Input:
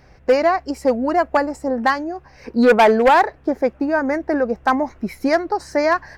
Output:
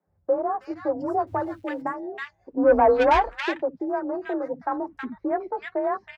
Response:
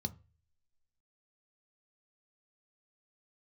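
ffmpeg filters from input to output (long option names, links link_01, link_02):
-filter_complex "[0:a]asettb=1/sr,asplit=3[link_01][link_02][link_03];[link_01]atrim=end=0.954[link_04];[link_02]atrim=start=0.95:end=1.5,asetpts=PTS-STARTPTS,afade=type=in:duration=0.004:curve=qsin,afade=type=out:start_time=0.546:duration=0.004:curve=qsin,aeval=exprs='val(0)+0.5*0.0355*sgn(val(0))':channel_layout=same[link_05];[link_03]atrim=start=1.496[link_06];[link_04][link_05]acrossfade=duration=0.004:curve1=hsin:curve2=qsin[link_07];[link_07][link_06]acrossfade=duration=0.004:curve1=qsin:curve2=hsin,asettb=1/sr,asplit=3[link_08][link_09][link_10];[link_08]atrim=end=4.764[link_11];[link_09]atrim=start=4.76:end=5.87,asetpts=PTS-STARTPTS,afade=type=in:duration=0.004:curve=qsin,afade=type=out:start_time=1.106:duration=0.004:curve=qsin,lowpass=frequency=3900:width=0.5412,lowpass=frequency=3900:width=1.3066[link_12];[link_10]atrim=start=5.866[link_13];[link_11][link_12]acrossfade=duration=0.004:curve1=hsin:curve2=qsin[link_14];[link_14][link_13]acrossfade=duration=0.004:curve1=qsin:curve2=hsin,afwtdn=0.0794,lowshelf=frequency=160:gain=8,asettb=1/sr,asplit=3[link_15][link_16][link_17];[link_15]atrim=end=2.574[link_18];[link_16]atrim=start=2.57:end=3.2,asetpts=PTS-STARTPTS,afade=type=in:duration=0.004:curve=qsin,afade=type=out:start_time=0.626:duration=0.004:curve=qsin,acontrast=49[link_19];[link_17]atrim=start=3.196[link_20];[link_18][link_19]acrossfade=duration=0.004:curve1=hsin:curve2=qsin[link_21];[link_21][link_20]acrossfade=duration=0.004:curve1=qsin:curve2=hsin,flanger=delay=5.7:depth=1.2:regen=-49:speed=0.81:shape=triangular,afreqshift=38,acrossover=split=220|1500[link_22][link_23][link_24];[link_22]adelay=60[link_25];[link_24]adelay=320[link_26];[link_25][link_23][link_26]amix=inputs=3:normalize=0,volume=-4.5dB"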